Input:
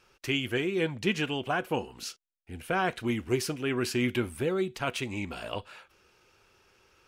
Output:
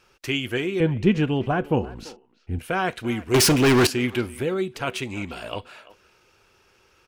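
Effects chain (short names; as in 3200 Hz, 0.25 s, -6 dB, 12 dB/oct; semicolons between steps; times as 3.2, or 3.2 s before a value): 0.8–2.59 tilt -3.5 dB/oct; 3.34–3.87 sample leveller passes 5; speakerphone echo 0.34 s, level -18 dB; gain +3.5 dB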